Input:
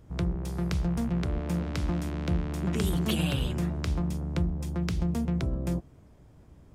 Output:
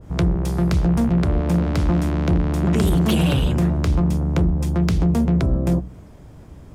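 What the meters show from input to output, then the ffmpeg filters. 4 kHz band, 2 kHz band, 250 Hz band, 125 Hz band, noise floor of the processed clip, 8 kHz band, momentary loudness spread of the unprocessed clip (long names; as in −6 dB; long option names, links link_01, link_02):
+6.0 dB, +7.5 dB, +10.5 dB, +10.5 dB, −43 dBFS, +6.5 dB, 4 LU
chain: -af "bandreject=frequency=61.99:width_type=h:width=4,bandreject=frequency=123.98:width_type=h:width=4,bandreject=frequency=185.97:width_type=h:width=4,bandreject=frequency=247.96:width_type=h:width=4,bandreject=frequency=309.95:width_type=h:width=4,bandreject=frequency=371.94:width_type=h:width=4,bandreject=frequency=433.93:width_type=h:width=4,bandreject=frequency=495.92:width_type=h:width=4,aeval=exprs='0.188*sin(PI/2*2*val(0)/0.188)':channel_layout=same,adynamicequalizer=threshold=0.00891:dfrequency=1700:dqfactor=0.7:tfrequency=1700:tqfactor=0.7:attack=5:release=100:ratio=0.375:range=2.5:mode=cutabove:tftype=highshelf,volume=2.5dB"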